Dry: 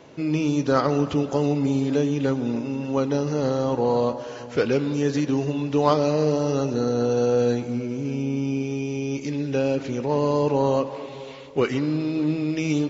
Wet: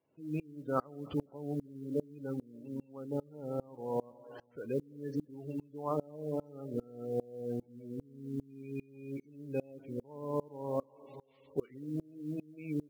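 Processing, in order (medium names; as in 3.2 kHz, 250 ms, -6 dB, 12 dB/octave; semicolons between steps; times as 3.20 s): spectral gate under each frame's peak -20 dB strong; modulation noise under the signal 33 dB; sawtooth tremolo in dB swelling 2.5 Hz, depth 28 dB; trim -8.5 dB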